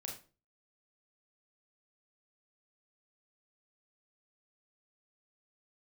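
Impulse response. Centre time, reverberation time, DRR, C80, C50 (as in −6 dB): 28 ms, 0.35 s, −0.5 dB, 12.5 dB, 6.0 dB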